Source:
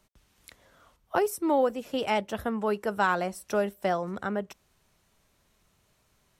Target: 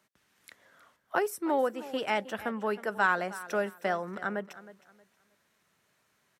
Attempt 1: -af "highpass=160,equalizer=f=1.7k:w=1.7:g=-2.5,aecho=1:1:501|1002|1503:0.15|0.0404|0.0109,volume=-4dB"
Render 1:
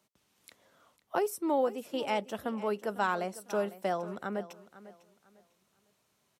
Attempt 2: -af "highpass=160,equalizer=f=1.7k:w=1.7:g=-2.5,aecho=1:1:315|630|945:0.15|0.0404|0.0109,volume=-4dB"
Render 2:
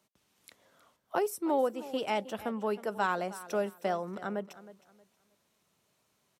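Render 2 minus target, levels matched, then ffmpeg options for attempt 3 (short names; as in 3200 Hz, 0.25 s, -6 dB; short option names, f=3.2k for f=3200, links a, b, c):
2000 Hz band -6.0 dB
-af "highpass=160,equalizer=f=1.7k:w=1.7:g=7.5,aecho=1:1:315|630|945:0.15|0.0404|0.0109,volume=-4dB"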